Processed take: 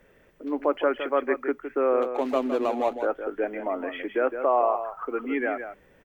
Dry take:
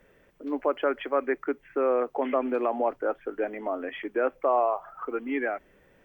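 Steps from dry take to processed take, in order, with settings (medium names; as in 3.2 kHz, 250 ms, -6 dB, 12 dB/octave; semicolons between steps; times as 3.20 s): 2.02–3.00 s: median filter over 25 samples; delay 162 ms -9 dB; trim +1.5 dB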